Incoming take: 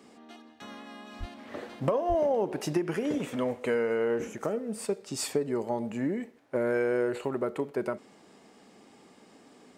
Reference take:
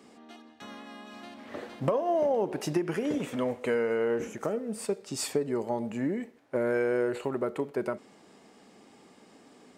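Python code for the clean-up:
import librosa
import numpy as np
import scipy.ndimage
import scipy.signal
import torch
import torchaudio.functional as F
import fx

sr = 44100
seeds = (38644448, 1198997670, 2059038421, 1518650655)

y = fx.fix_deplosive(x, sr, at_s=(1.19, 2.08))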